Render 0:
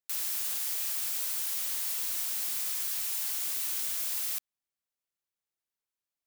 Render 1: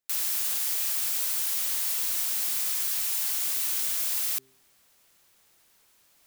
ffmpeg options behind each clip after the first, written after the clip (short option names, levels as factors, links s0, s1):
-af "bandreject=f=131.7:t=h:w=4,bandreject=f=263.4:t=h:w=4,bandreject=f=395.1:t=h:w=4,areverse,acompressor=mode=upward:threshold=0.00447:ratio=2.5,areverse,volume=1.68"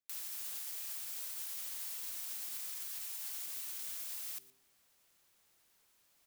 -af "alimiter=limit=0.0631:level=0:latency=1:release=134,aecho=1:1:117:0.119,volume=0.376"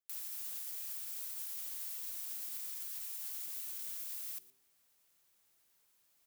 -af "crystalizer=i=0.5:c=0,volume=0.562"